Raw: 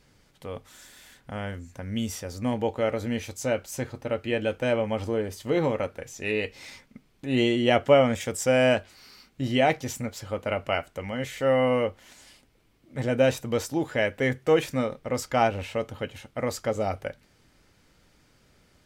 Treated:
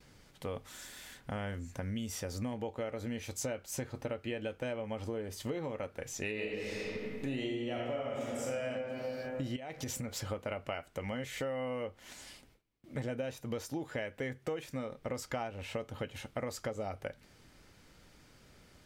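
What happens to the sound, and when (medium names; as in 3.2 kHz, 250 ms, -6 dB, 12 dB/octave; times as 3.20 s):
6.32–8.64 s: reverb throw, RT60 1.8 s, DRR -4.5 dB
9.56–10.24 s: compression 12:1, threshold -33 dBFS
13.15–13.83 s: band-stop 7.9 kHz
whole clip: compression 16:1, threshold -35 dBFS; gate with hold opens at -53 dBFS; trim +1 dB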